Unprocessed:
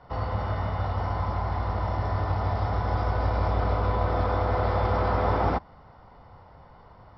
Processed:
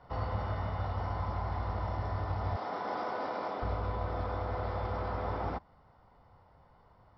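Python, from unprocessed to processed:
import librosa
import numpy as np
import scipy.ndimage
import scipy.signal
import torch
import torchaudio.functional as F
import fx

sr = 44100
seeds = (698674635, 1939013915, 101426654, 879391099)

y = fx.highpass(x, sr, hz=230.0, slope=24, at=(2.56, 3.62))
y = fx.rider(y, sr, range_db=10, speed_s=0.5)
y = y * 10.0 ** (-8.0 / 20.0)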